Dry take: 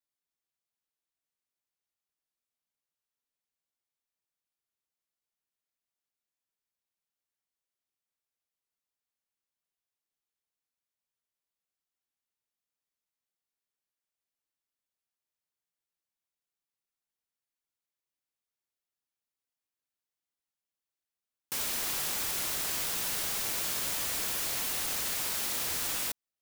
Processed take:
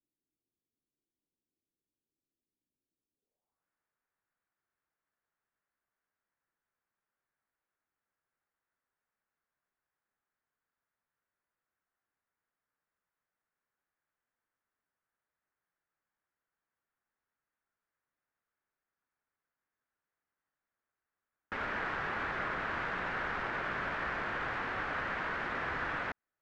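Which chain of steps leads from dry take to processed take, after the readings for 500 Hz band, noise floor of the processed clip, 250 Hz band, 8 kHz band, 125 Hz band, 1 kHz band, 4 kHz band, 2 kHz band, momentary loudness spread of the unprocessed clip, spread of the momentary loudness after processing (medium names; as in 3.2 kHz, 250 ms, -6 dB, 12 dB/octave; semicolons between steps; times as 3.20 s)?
+4.0 dB, under -85 dBFS, +3.5 dB, under -30 dB, +3.0 dB, +7.0 dB, -13.5 dB, +6.0 dB, 1 LU, 1 LU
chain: treble shelf 4.5 kHz -11.5 dB; in parallel at -3 dB: peak limiter -38 dBFS, peak gain reduction 11 dB; on the sum: sample-rate reducer 11 kHz, jitter 20%; low-pass sweep 320 Hz -> 1.6 kHz, 3.14–3.68 s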